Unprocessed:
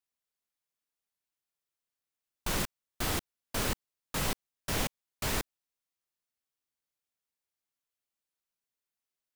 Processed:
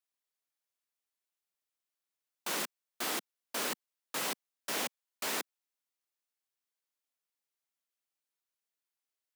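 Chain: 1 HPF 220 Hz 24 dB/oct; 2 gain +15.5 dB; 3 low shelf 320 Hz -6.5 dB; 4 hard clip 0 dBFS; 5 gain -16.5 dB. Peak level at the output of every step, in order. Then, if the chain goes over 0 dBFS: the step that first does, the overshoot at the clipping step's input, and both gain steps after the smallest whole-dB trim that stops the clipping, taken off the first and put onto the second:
-19.5, -4.0, -5.0, -5.0, -21.5 dBFS; no overload

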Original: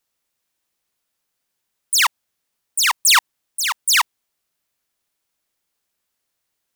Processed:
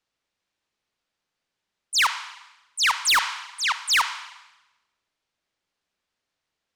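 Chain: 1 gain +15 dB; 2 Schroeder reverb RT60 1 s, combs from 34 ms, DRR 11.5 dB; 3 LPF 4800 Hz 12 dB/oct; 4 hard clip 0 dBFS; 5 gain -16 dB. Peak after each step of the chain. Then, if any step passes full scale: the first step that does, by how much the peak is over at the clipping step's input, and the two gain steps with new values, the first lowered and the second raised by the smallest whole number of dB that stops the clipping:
+8.5, +10.5, +9.5, 0.0, -16.0 dBFS; step 1, 9.5 dB; step 1 +5 dB, step 5 -6 dB

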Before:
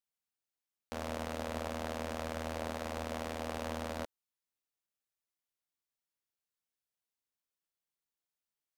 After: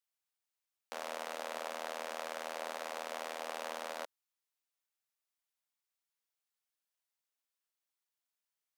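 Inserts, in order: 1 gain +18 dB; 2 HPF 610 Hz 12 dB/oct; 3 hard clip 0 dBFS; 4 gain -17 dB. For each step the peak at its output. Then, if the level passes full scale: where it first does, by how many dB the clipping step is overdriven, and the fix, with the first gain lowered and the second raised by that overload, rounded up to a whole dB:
-2.5, -4.0, -4.0, -21.0 dBFS; no overload

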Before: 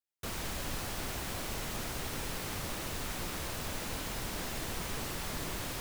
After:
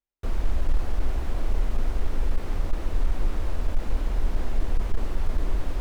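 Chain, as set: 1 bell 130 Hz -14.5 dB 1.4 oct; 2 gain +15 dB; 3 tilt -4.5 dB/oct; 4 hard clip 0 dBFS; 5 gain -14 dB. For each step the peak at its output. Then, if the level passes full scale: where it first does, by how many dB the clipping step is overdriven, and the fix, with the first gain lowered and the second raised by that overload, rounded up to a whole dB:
-26.0, -11.0, +5.0, 0.0, -14.0 dBFS; step 3, 5.0 dB; step 2 +10 dB, step 5 -9 dB

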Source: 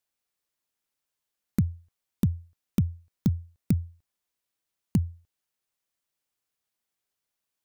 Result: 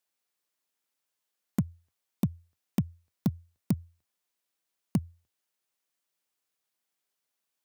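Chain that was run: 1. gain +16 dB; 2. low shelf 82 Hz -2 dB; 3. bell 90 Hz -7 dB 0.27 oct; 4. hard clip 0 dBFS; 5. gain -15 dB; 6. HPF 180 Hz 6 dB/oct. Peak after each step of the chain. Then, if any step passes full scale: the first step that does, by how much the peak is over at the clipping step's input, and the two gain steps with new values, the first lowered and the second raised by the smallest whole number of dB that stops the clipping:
+4.5, +4.0, +3.5, 0.0, -15.0, -15.5 dBFS; step 1, 3.5 dB; step 1 +12 dB, step 5 -11 dB

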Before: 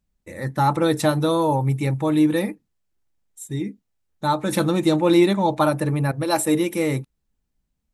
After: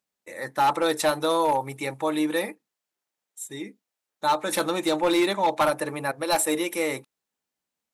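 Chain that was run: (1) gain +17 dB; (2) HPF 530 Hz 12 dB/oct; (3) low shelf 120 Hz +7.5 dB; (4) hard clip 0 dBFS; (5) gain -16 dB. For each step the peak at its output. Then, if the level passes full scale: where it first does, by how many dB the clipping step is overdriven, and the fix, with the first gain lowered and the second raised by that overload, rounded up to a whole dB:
+11.0, +9.0, +9.0, 0.0, -16.0 dBFS; step 1, 9.0 dB; step 1 +8 dB, step 5 -7 dB

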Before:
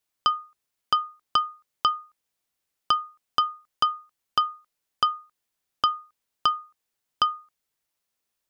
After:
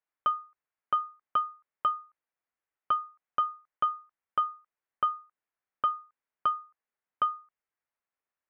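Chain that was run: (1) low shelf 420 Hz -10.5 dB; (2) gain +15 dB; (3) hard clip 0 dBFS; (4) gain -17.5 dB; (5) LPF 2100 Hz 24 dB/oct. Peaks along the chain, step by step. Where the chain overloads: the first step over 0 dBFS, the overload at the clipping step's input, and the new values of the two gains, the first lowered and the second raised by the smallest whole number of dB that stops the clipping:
-8.5, +6.5, 0.0, -17.5, -18.0 dBFS; step 2, 6.5 dB; step 2 +8 dB, step 4 -10.5 dB

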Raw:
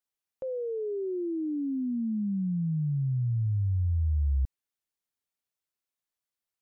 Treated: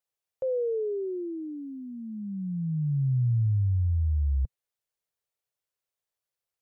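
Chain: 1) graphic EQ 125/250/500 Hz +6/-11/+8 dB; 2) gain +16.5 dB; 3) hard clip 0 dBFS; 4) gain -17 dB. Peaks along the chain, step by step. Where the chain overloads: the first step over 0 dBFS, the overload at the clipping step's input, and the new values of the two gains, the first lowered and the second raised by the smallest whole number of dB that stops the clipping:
-20.0, -3.5, -3.5, -20.5 dBFS; no overload

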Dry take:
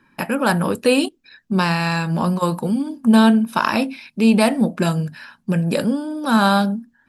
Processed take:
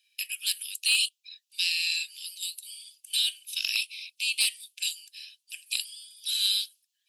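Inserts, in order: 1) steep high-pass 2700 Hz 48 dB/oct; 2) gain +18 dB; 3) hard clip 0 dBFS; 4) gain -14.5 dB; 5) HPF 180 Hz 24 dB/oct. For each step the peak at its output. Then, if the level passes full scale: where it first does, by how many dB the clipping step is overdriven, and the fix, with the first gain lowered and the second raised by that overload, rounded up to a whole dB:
-13.5, +4.5, 0.0, -14.5, -13.5 dBFS; step 2, 4.5 dB; step 2 +13 dB, step 4 -9.5 dB

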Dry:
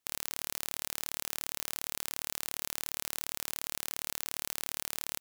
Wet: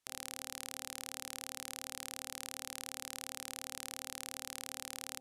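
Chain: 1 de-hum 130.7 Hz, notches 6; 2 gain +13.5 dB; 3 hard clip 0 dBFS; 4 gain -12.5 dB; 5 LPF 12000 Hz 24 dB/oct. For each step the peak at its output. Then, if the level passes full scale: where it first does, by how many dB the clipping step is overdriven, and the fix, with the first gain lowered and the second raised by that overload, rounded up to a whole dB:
-8.0, +5.5, 0.0, -12.5, -18.5 dBFS; step 2, 5.5 dB; step 2 +7.5 dB, step 4 -6.5 dB

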